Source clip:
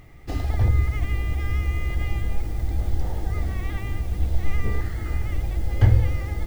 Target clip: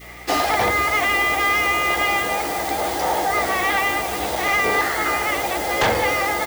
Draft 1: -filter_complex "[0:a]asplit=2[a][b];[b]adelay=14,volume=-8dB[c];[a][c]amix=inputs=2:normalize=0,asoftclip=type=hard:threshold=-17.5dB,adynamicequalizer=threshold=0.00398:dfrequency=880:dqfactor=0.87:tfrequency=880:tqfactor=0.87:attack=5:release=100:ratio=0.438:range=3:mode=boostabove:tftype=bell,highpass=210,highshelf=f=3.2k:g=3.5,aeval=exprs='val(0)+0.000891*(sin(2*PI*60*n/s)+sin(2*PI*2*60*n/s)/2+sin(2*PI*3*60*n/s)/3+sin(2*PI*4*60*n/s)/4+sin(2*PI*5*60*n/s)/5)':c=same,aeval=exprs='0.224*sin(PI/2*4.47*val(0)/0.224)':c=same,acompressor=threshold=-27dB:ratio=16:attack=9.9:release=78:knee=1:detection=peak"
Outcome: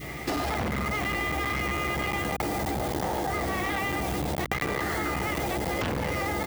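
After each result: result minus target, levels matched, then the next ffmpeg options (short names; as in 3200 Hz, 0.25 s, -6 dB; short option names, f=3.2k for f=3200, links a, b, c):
hard clip: distortion +20 dB; compressor: peak gain reduction +12 dB; 250 Hz band +8.5 dB
-filter_complex "[0:a]asplit=2[a][b];[b]adelay=14,volume=-8dB[c];[a][c]amix=inputs=2:normalize=0,asoftclip=type=hard:threshold=-8.5dB,adynamicequalizer=threshold=0.00398:dfrequency=880:dqfactor=0.87:tfrequency=880:tqfactor=0.87:attack=5:release=100:ratio=0.438:range=3:mode=boostabove:tftype=bell,highpass=210,highshelf=f=3.2k:g=3.5,aeval=exprs='val(0)+0.000891*(sin(2*PI*60*n/s)+sin(2*PI*2*60*n/s)/2+sin(2*PI*3*60*n/s)/3+sin(2*PI*4*60*n/s)/4+sin(2*PI*5*60*n/s)/5)':c=same,aeval=exprs='0.224*sin(PI/2*4.47*val(0)/0.224)':c=same,acompressor=threshold=-27dB:ratio=16:attack=9.9:release=78:knee=1:detection=peak"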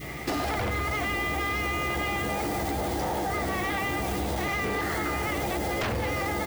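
compressor: peak gain reduction +12.5 dB; 250 Hz band +7.5 dB
-filter_complex "[0:a]asplit=2[a][b];[b]adelay=14,volume=-8dB[c];[a][c]amix=inputs=2:normalize=0,asoftclip=type=hard:threshold=-8.5dB,adynamicequalizer=threshold=0.00398:dfrequency=880:dqfactor=0.87:tfrequency=880:tqfactor=0.87:attack=5:release=100:ratio=0.438:range=3:mode=boostabove:tftype=bell,highpass=210,highshelf=f=3.2k:g=3.5,aeval=exprs='val(0)+0.000891*(sin(2*PI*60*n/s)+sin(2*PI*2*60*n/s)/2+sin(2*PI*3*60*n/s)/3+sin(2*PI*4*60*n/s)/4+sin(2*PI*5*60*n/s)/5)':c=same,aeval=exprs='0.224*sin(PI/2*4.47*val(0)/0.224)':c=same"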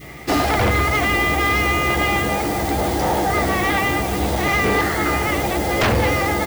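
250 Hz band +7.5 dB
-filter_complex "[0:a]asplit=2[a][b];[b]adelay=14,volume=-8dB[c];[a][c]amix=inputs=2:normalize=0,asoftclip=type=hard:threshold=-8.5dB,adynamicequalizer=threshold=0.00398:dfrequency=880:dqfactor=0.87:tfrequency=880:tqfactor=0.87:attack=5:release=100:ratio=0.438:range=3:mode=boostabove:tftype=bell,highpass=520,highshelf=f=3.2k:g=3.5,aeval=exprs='val(0)+0.000891*(sin(2*PI*60*n/s)+sin(2*PI*2*60*n/s)/2+sin(2*PI*3*60*n/s)/3+sin(2*PI*4*60*n/s)/4+sin(2*PI*5*60*n/s)/5)':c=same,aeval=exprs='0.224*sin(PI/2*4.47*val(0)/0.224)':c=same"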